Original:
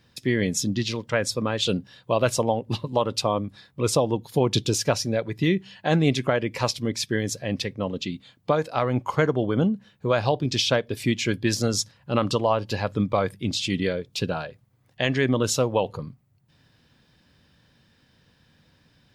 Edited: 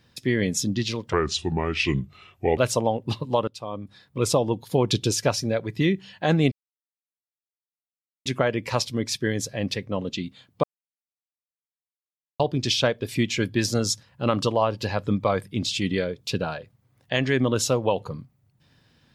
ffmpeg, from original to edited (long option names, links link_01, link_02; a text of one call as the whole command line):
ffmpeg -i in.wav -filter_complex "[0:a]asplit=7[link_01][link_02][link_03][link_04][link_05][link_06][link_07];[link_01]atrim=end=1.134[link_08];[link_02]atrim=start=1.13:end=2.2,asetpts=PTS-STARTPTS,asetrate=32634,aresample=44100,atrim=end_sample=63766,asetpts=PTS-STARTPTS[link_09];[link_03]atrim=start=2.196:end=3.1,asetpts=PTS-STARTPTS,afade=type=out:start_time=0.9:duration=0.004:curve=hsin:silence=0.0668344[link_10];[link_04]atrim=start=3.1:end=6.14,asetpts=PTS-STARTPTS,afade=type=in:duration=0.74:silence=0.0668344,afade=type=out:start_time=3.036:duration=0.004:curve=hsin,apad=pad_dur=1.74[link_11];[link_05]atrim=start=6.14:end=8.52,asetpts=PTS-STARTPTS,afade=type=in:duration=0.004:curve=hsin,afade=type=out:start_time=2.376:duration=0.004:curve=hsin[link_12];[link_06]atrim=start=8.52:end=10.28,asetpts=PTS-STARTPTS,volume=0[link_13];[link_07]atrim=start=10.28,asetpts=PTS-STARTPTS,afade=type=in:duration=0.004:curve=hsin[link_14];[link_08][link_09]acrossfade=duration=0.004:curve1=hsin:curve2=hsin[link_15];[link_10][link_11][link_12][link_13][link_14]concat=n=5:v=0:a=1[link_16];[link_15][link_16]acrossfade=duration=0.004:curve1=hsin:curve2=hsin" out.wav